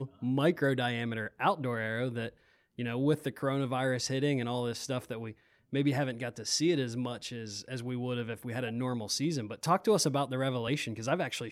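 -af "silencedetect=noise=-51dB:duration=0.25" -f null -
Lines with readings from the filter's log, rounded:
silence_start: 2.30
silence_end: 2.78 | silence_duration: 0.48
silence_start: 5.33
silence_end: 5.73 | silence_duration: 0.40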